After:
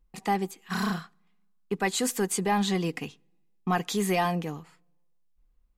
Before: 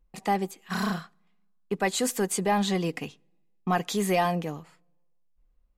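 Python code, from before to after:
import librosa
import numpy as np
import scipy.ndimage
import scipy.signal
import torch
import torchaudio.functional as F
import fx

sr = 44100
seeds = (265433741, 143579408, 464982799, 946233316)

y = fx.peak_eq(x, sr, hz=590.0, db=-8.5, octaves=0.3)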